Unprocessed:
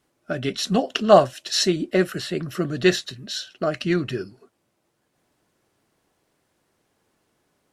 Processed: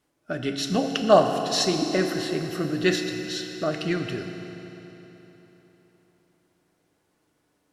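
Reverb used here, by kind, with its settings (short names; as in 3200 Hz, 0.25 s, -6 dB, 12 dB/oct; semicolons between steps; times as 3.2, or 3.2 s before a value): FDN reverb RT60 3.8 s, high-frequency decay 0.85×, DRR 4.5 dB; gain -3.5 dB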